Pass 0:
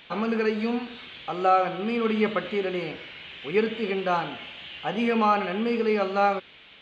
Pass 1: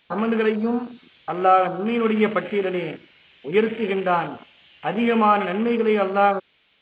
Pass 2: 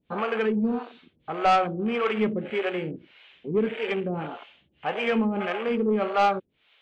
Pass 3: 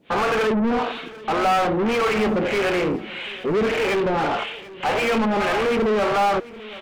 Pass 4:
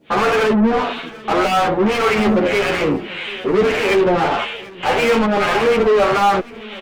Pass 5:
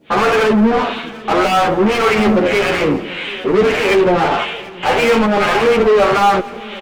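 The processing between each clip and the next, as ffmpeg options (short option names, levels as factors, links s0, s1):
-af "afwtdn=0.0178,volume=1.68"
-filter_complex "[0:a]acrossover=split=420[s0][s1];[s0]aeval=exprs='val(0)*(1-1/2+1/2*cos(2*PI*1.7*n/s))':c=same[s2];[s1]aeval=exprs='val(0)*(1-1/2-1/2*cos(2*PI*1.7*n/s))':c=same[s3];[s2][s3]amix=inputs=2:normalize=0,asoftclip=type=tanh:threshold=0.15,volume=1.26"
-filter_complex "[0:a]asplit=2[s0][s1];[s1]highpass=f=720:p=1,volume=39.8,asoftclip=type=tanh:threshold=0.2[s2];[s0][s2]amix=inputs=2:normalize=0,lowpass=f=2200:p=1,volume=0.501,aecho=1:1:739|1478|2217:0.112|0.0337|0.0101"
-filter_complex "[0:a]asplit=2[s0][s1];[s1]adelay=10.1,afreqshift=-1.8[s2];[s0][s2]amix=inputs=2:normalize=1,volume=2.51"
-af "aecho=1:1:171|342|513|684|855:0.1|0.057|0.0325|0.0185|0.0106,volume=1.33"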